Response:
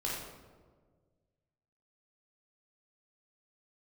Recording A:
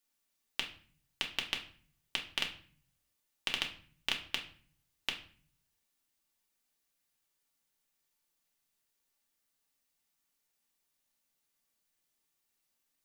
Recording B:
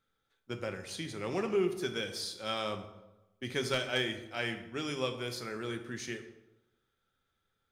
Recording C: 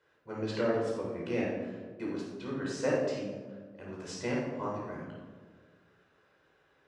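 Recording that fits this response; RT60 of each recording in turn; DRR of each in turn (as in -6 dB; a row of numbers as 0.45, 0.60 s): C; 0.45, 1.0, 1.6 s; 0.5, 6.0, -5.0 dB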